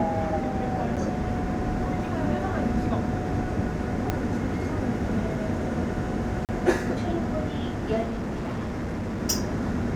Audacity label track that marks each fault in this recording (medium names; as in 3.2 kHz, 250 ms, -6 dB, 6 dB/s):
0.960000	0.970000	dropout 7.5 ms
4.100000	4.100000	pop -11 dBFS
6.450000	6.490000	dropout 38 ms
8.020000	9.220000	clipped -27 dBFS